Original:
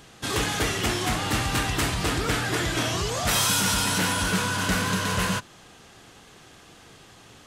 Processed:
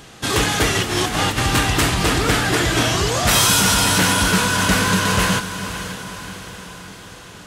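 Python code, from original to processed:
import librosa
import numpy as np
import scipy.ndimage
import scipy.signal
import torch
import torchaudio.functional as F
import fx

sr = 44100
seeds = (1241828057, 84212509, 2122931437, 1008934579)

p1 = fx.over_compress(x, sr, threshold_db=-28.0, ratio=-0.5, at=(0.75, 1.38))
p2 = p1 + fx.echo_diffused(p1, sr, ms=538, feedback_pct=54, wet_db=-11, dry=0)
y = p2 * 10.0 ** (7.5 / 20.0)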